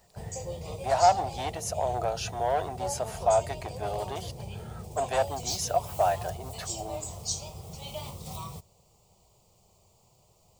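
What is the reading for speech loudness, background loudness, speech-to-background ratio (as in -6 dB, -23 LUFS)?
-29.5 LUFS, -38.0 LUFS, 8.5 dB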